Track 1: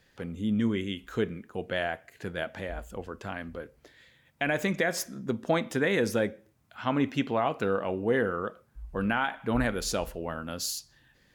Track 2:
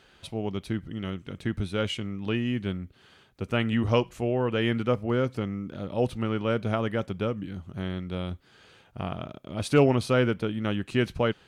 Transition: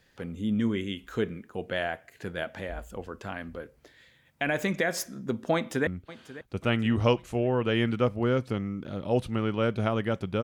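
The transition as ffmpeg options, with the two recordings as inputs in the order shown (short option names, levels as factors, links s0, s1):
-filter_complex "[0:a]apad=whole_dur=10.43,atrim=end=10.43,atrim=end=5.872[s0];[1:a]atrim=start=2.738:end=7.3[s1];[s0][s1]acrossfade=d=0.004:c1=hsin:c2=hsin,asplit=2[s2][s3];[s3]afade=t=in:st=5.54:d=0.01,afade=t=out:st=5.87:d=0.01,aecho=0:1:540|1080|1620|2160:0.158489|0.0713202|0.0320941|0.0144423[s4];[s2][s4]amix=inputs=2:normalize=0"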